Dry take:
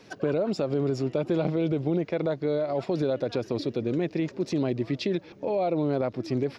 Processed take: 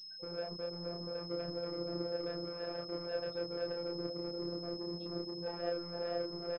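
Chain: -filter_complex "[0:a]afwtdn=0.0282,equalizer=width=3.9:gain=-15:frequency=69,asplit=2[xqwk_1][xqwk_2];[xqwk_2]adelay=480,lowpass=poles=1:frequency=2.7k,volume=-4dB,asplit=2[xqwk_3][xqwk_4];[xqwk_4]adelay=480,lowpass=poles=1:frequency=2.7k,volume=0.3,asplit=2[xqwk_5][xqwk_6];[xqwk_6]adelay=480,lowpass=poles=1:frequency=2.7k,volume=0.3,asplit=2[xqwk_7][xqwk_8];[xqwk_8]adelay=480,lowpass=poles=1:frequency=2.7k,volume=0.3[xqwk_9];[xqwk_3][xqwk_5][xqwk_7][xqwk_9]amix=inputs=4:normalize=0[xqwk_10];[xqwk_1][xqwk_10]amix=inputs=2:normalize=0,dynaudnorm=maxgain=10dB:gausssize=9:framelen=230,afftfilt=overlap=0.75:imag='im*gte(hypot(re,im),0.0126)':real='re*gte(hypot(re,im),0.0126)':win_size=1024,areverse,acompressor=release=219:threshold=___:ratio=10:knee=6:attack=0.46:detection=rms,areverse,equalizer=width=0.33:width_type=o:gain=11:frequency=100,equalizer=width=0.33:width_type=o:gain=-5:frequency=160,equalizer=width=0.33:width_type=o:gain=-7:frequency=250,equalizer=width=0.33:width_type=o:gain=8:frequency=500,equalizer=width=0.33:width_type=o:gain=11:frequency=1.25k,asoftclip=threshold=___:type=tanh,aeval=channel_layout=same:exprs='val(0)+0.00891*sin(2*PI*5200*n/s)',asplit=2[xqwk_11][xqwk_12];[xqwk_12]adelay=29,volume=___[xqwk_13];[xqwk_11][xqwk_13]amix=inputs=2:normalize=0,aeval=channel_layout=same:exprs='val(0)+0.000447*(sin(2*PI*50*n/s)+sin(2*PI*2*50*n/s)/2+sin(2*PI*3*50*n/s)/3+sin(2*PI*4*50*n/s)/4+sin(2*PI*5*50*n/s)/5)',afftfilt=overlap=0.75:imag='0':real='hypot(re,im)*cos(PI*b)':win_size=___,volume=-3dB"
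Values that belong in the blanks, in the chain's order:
-29dB, -30.5dB, -2.5dB, 1024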